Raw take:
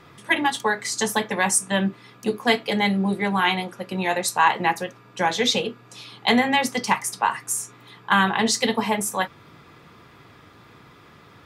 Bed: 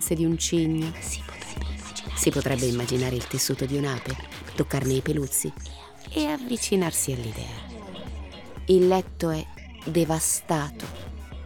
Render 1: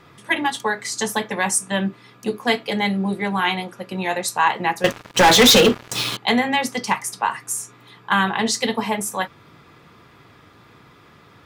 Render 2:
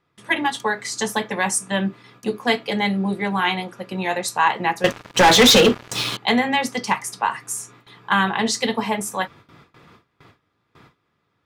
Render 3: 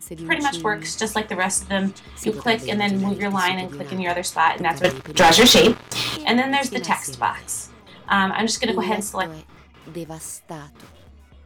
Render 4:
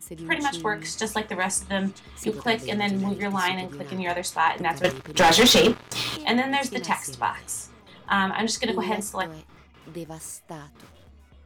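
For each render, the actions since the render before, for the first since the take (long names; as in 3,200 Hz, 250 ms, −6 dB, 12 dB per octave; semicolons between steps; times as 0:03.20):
0:04.84–0:06.17: leveller curve on the samples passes 5
noise gate with hold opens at −38 dBFS; high-shelf EQ 11,000 Hz −6.5 dB
mix in bed −10 dB
level −4 dB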